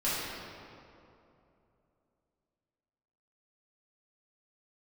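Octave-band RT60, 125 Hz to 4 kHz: 3.2, 3.0, 3.0, 2.6, 2.0, 1.5 s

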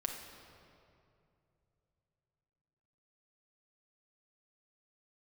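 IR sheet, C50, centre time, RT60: 3.5 dB, 64 ms, 2.6 s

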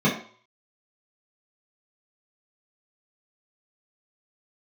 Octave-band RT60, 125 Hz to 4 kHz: 0.35, 0.40, 0.45, 0.55, 0.45, 0.45 s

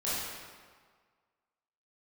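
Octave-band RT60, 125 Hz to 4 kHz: 1.5, 1.5, 1.6, 1.7, 1.4, 1.2 s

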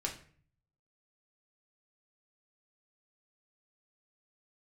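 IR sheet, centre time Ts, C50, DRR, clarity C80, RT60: 18 ms, 9.5 dB, -0.5 dB, 14.5 dB, 0.50 s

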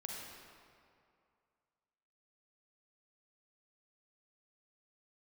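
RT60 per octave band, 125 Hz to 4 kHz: 2.2, 2.2, 2.3, 2.4, 2.0, 1.5 s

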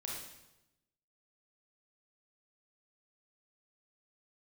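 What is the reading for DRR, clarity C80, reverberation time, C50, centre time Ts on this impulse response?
-3.5 dB, 4.0 dB, 0.95 s, 0.5 dB, 62 ms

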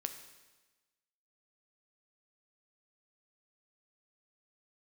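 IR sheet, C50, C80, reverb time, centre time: 9.5 dB, 11.0 dB, 1.2 s, 17 ms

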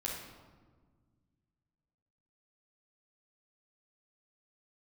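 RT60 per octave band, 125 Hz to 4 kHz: 2.8, 2.5, 1.6, 1.4, 1.0, 0.85 s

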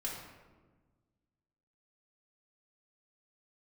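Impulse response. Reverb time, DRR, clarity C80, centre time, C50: 1.3 s, -4.5 dB, 4.5 dB, 59 ms, 2.0 dB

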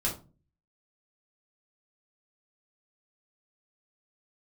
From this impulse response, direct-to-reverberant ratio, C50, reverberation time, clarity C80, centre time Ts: -4.5 dB, 9.0 dB, 0.35 s, 15.5 dB, 22 ms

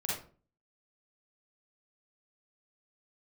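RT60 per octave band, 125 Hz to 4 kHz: 0.55, 0.50, 0.45, 0.40, 0.30, 0.25 s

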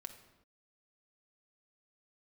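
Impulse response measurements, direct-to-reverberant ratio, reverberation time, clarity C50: 4.5 dB, not exponential, 9.5 dB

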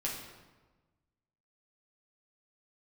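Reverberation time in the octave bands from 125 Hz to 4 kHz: 1.7, 1.5, 1.3, 1.2, 1.0, 0.85 s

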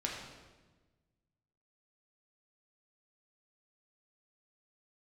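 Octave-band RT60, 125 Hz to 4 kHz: 2.0, 1.6, 1.4, 1.2, 1.1, 1.0 s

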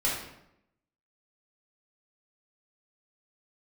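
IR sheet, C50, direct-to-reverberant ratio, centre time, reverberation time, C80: 2.5 dB, -7.0 dB, 50 ms, 0.80 s, 6.0 dB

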